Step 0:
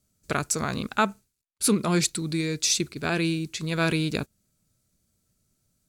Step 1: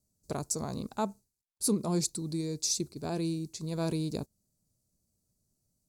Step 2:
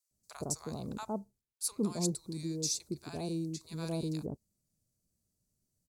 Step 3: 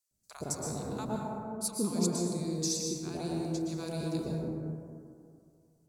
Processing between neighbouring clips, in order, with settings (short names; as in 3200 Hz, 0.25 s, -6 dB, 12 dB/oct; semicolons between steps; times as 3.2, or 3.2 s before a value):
band shelf 2100 Hz -15.5 dB; gain -6 dB
bands offset in time highs, lows 0.11 s, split 930 Hz; gain -3.5 dB
plate-style reverb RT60 2.4 s, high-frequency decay 0.3×, pre-delay 0.105 s, DRR -1.5 dB